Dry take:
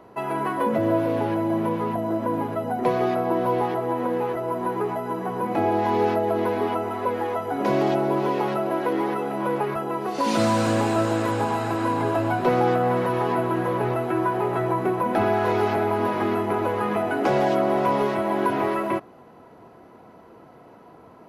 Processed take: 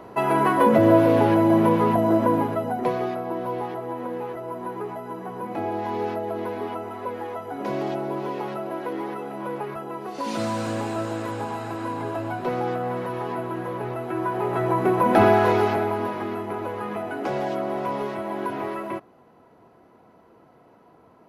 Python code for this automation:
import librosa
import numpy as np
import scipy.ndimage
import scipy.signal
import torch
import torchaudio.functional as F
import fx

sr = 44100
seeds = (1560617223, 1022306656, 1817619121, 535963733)

y = fx.gain(x, sr, db=fx.line((2.2, 6.0), (3.2, -6.0), (13.93, -6.0), (15.23, 6.0), (16.25, -6.0)))